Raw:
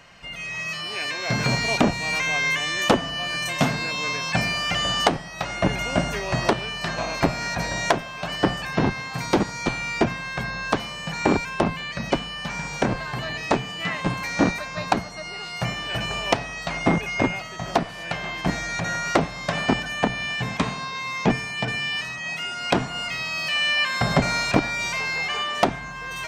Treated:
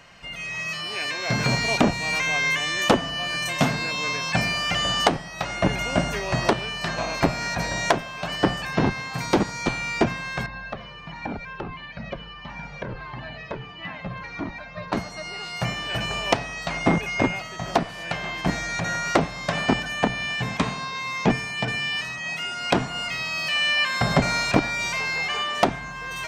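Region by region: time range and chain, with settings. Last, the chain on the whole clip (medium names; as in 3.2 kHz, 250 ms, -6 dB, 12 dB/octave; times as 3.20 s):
10.46–14.93 s: distance through air 260 m + compression 2:1, threshold -25 dBFS + Shepard-style flanger falling 1.5 Hz
whole clip: none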